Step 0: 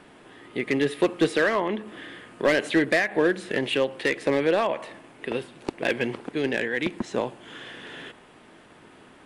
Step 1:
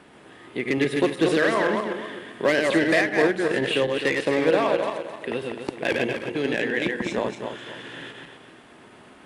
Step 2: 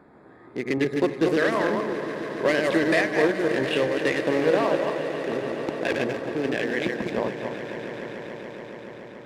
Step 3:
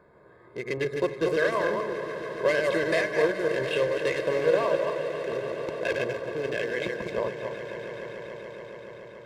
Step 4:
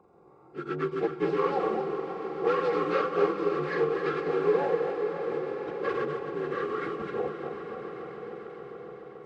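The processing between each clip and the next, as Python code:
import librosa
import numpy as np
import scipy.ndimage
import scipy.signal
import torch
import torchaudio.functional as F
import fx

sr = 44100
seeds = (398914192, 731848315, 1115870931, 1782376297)

y1 = fx.reverse_delay_fb(x, sr, ms=129, feedback_pct=54, wet_db=-3.0)
y1 = scipy.signal.sosfilt(scipy.signal.butter(2, 41.0, 'highpass', fs=sr, output='sos'), y1)
y2 = fx.wiener(y1, sr, points=15)
y2 = fx.echo_swell(y2, sr, ms=142, loudest=5, wet_db=-16.0)
y2 = y2 * librosa.db_to_amplitude(-1.0)
y3 = y2 + 0.71 * np.pad(y2, (int(1.9 * sr / 1000.0), 0))[:len(y2)]
y3 = y3 * librosa.db_to_amplitude(-5.0)
y4 = fx.partial_stretch(y3, sr, pct=80)
y4 = fx.echo_split(y4, sr, split_hz=970.0, low_ms=535, high_ms=266, feedback_pct=52, wet_db=-11.0)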